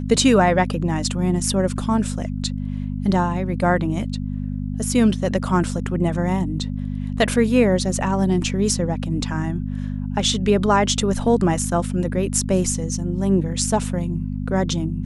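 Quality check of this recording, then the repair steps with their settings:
mains hum 50 Hz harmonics 5 −26 dBFS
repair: hum removal 50 Hz, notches 5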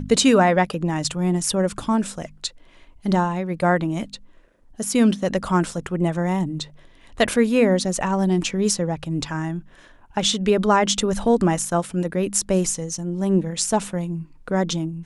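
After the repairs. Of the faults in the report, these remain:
none of them is left

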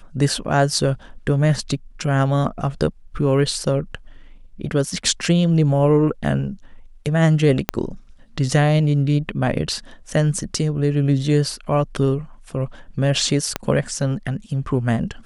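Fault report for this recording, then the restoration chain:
0:07.69: click −3 dBFS
0:13.56: click −6 dBFS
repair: click removal

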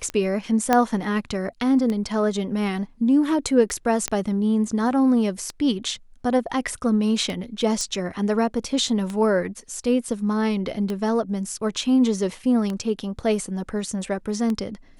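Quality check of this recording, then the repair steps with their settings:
scratch tick 33 1/3 rpm −15 dBFS
0:00.73: click −5 dBFS
0:04.08: click −8 dBFS
0:07.81: click −14 dBFS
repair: click removal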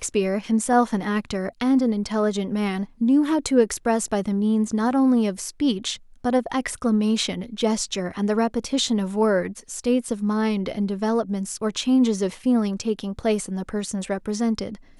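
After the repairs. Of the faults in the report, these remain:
none of them is left

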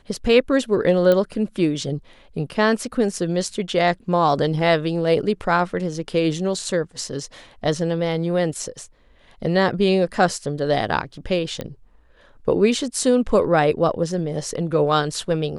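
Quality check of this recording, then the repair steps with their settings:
0:01.12: click −8 dBFS
0:11.61: click −15 dBFS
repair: click removal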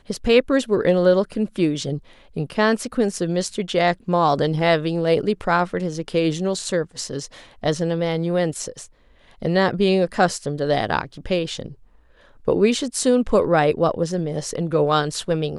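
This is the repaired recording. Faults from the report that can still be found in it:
0:01.12: click
0:11.61: click

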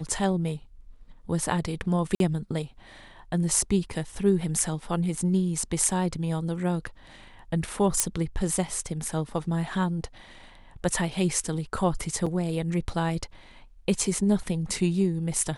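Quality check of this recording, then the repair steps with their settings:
0:02.15–0:02.20: drop-out 52 ms
0:08.00: click −5 dBFS
0:12.26–0:12.27: drop-out 5.1 ms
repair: click removal
repair the gap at 0:02.15, 52 ms
repair the gap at 0:12.26, 5.1 ms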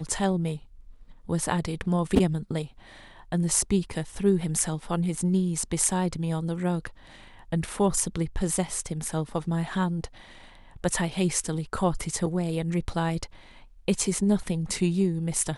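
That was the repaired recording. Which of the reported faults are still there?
none of them is left

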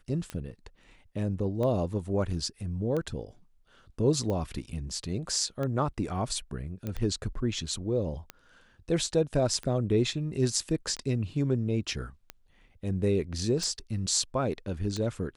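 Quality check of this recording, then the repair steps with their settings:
scratch tick 45 rpm −21 dBFS
0:06.87: click −21 dBFS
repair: click removal

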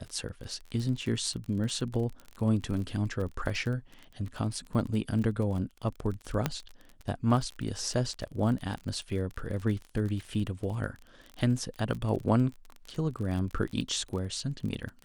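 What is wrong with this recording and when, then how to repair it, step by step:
surface crackle 34 per second −35 dBFS
0:06.46: click −12 dBFS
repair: click removal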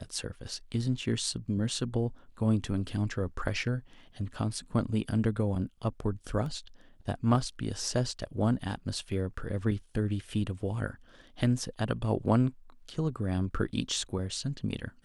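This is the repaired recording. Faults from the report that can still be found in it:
0:06.46: click

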